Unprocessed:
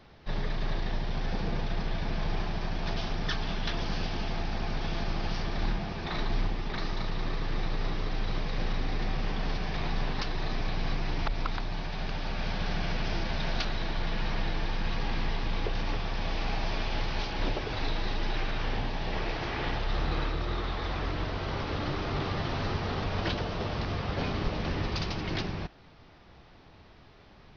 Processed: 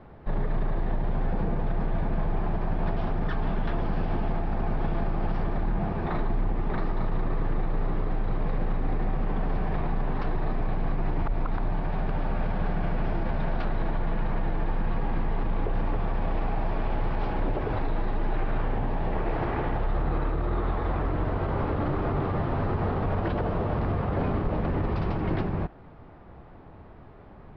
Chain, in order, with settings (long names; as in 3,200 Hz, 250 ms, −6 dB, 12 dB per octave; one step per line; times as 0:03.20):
low-pass filter 1,200 Hz 12 dB per octave
brickwall limiter −26 dBFS, peak gain reduction 8.5 dB
level +7.5 dB